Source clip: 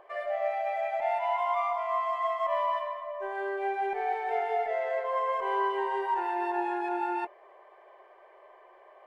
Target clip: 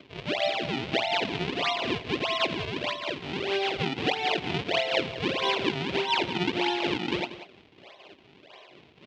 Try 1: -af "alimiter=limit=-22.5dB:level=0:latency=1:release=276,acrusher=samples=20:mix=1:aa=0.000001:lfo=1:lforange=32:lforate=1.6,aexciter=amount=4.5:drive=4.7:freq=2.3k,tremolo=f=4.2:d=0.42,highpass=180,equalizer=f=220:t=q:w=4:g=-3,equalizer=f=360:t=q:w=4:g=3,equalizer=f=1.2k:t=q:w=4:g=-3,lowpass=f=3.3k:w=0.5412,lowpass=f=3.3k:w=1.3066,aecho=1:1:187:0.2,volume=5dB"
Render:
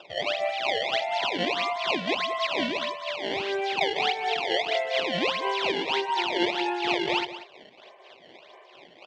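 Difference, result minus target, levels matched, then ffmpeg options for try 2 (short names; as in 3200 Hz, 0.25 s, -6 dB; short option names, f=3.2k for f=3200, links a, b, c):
decimation with a swept rate: distortion -9 dB
-af "alimiter=limit=-22.5dB:level=0:latency=1:release=276,acrusher=samples=46:mix=1:aa=0.000001:lfo=1:lforange=73.6:lforate=1.6,aexciter=amount=4.5:drive=4.7:freq=2.3k,tremolo=f=4.2:d=0.42,highpass=180,equalizer=f=220:t=q:w=4:g=-3,equalizer=f=360:t=q:w=4:g=3,equalizer=f=1.2k:t=q:w=4:g=-3,lowpass=f=3.3k:w=0.5412,lowpass=f=3.3k:w=1.3066,aecho=1:1:187:0.2,volume=5dB"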